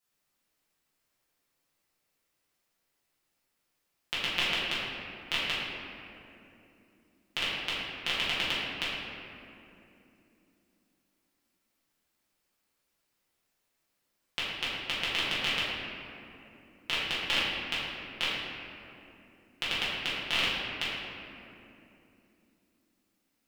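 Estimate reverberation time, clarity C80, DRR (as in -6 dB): 3.0 s, -0.5 dB, -11.0 dB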